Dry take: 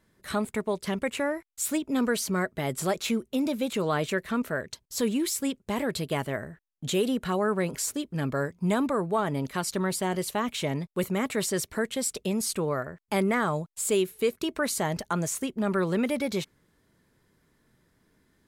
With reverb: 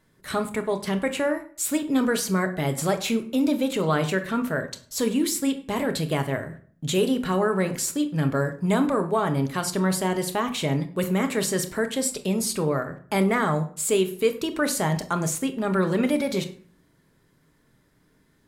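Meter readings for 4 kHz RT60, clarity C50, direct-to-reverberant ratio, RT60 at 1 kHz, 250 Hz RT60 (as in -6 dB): 0.35 s, 12.5 dB, 7.0 dB, 0.45 s, 0.65 s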